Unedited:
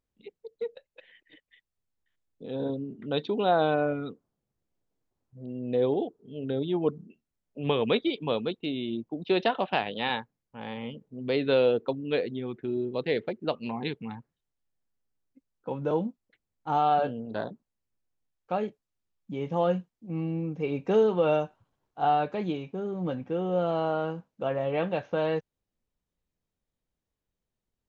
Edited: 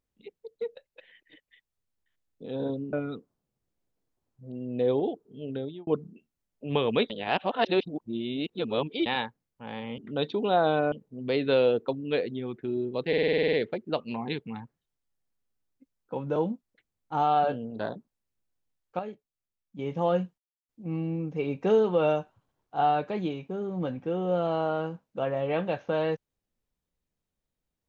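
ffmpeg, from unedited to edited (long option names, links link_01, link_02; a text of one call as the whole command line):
ffmpeg -i in.wav -filter_complex "[0:a]asplit=19[link_01][link_02][link_03][link_04][link_05][link_06][link_07][link_08][link_09][link_10][link_11][link_12][link_13][link_14][link_15][link_16][link_17][link_18][link_19];[link_01]atrim=end=2.932[link_20];[link_02]atrim=start=3.868:end=6.81,asetpts=PTS-STARTPTS,afade=type=out:start_time=2.522:duration=0.42[link_21];[link_03]atrim=start=6.81:end=8.042,asetpts=PTS-STARTPTS,afade=type=in:duration=0.004:curve=hsin[link_22];[link_04]atrim=start=8.038:end=10.002,asetpts=PTS-STARTPTS,areverse[link_23];[link_05]atrim=start=9.998:end=10.922[link_24];[link_06]atrim=start=2.928:end=3.872[link_25];[link_07]atrim=start=10.918:end=13.132[link_26];[link_08]atrim=start=13.078:end=13.132[link_27];[link_09]atrim=start=13.078:end=13.132[link_28];[link_10]atrim=start=13.078:end=13.132[link_29];[link_11]atrim=start=13.078:end=13.132[link_30];[link_12]atrim=start=13.078:end=13.132[link_31];[link_13]atrim=start=13.078:end=13.132[link_32];[link_14]atrim=start=13.078:end=13.132[link_33];[link_15]atrim=start=13.078:end=13.132[link_34];[link_16]atrim=start=13.078:end=18.542[link_35];[link_17]atrim=start=18.538:end=19.342,asetpts=PTS-STARTPTS,volume=-8dB[link_36];[link_18]atrim=start=19.338:end=19.93,asetpts=PTS-STARTPTS,afade=type=out:start_time=0.588:duration=0.004:curve=hsin,apad=pad_dur=0.31[link_37];[link_19]atrim=start=19.93,asetpts=PTS-STARTPTS,afade=type=in:duration=0.004:curve=hsin[link_38];[link_21][link_22]concat=n=2:v=0:a=1[link_39];[link_20][link_39]acrossfade=duration=0.004:curve1=hsin:curve2=hsin[link_40];[link_40][link_23]acrossfade=duration=0.004:curve1=hsin:curve2=hsin[link_41];[link_41][link_24]acrossfade=duration=0.004:curve1=hsin:curve2=hsin[link_42];[link_42][link_25]acrossfade=duration=0.004:curve1=hsin:curve2=hsin[link_43];[link_43][link_26]acrossfade=duration=0.004:curve1=hsin:curve2=hsin[link_44];[link_44][link_27]acrossfade=duration=0.004:curve1=hsin:curve2=hsin[link_45];[link_45][link_28]acrossfade=duration=0.004:curve1=hsin:curve2=hsin[link_46];[link_46][link_29]acrossfade=duration=0.004:curve1=hsin:curve2=hsin[link_47];[link_47][link_30]acrossfade=duration=0.004:curve1=hsin:curve2=hsin[link_48];[link_48][link_31]acrossfade=duration=0.004:curve1=hsin:curve2=hsin[link_49];[link_49][link_32]acrossfade=duration=0.004:curve1=hsin:curve2=hsin[link_50];[link_50][link_33]acrossfade=duration=0.004:curve1=hsin:curve2=hsin[link_51];[link_51][link_34]acrossfade=duration=0.004:curve1=hsin:curve2=hsin[link_52];[link_52][link_35]acrossfade=duration=0.004:curve1=hsin:curve2=hsin[link_53];[link_53][link_36]acrossfade=duration=0.004:curve1=hsin:curve2=hsin[link_54];[link_37][link_38]concat=n=2:v=0:a=1[link_55];[link_54][link_55]acrossfade=duration=0.004:curve1=hsin:curve2=hsin" out.wav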